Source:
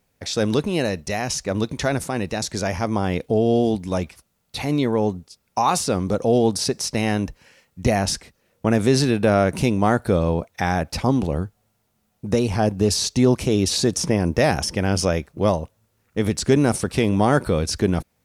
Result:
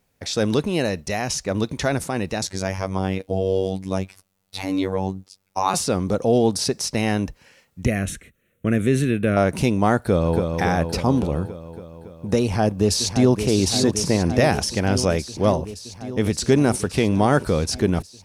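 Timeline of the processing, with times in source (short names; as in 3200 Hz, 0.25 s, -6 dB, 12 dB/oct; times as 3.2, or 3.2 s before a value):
2.47–5.74 robotiser 95 Hz
7.85–9.37 fixed phaser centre 2100 Hz, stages 4
9.97–10.45 echo throw 0.28 s, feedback 70%, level -5 dB
12.43–13.46 echo throw 0.57 s, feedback 80%, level -8.5 dB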